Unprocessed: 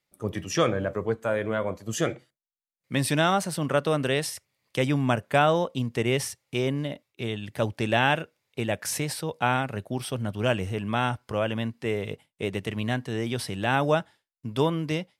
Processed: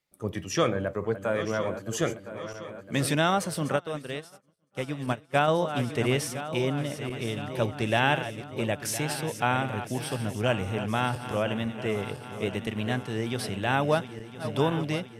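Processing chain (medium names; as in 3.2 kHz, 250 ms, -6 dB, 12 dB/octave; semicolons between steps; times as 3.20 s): backward echo that repeats 507 ms, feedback 74%, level -11.5 dB; 3.76–5.48 s: upward expansion 2.5:1, over -43 dBFS; trim -1.5 dB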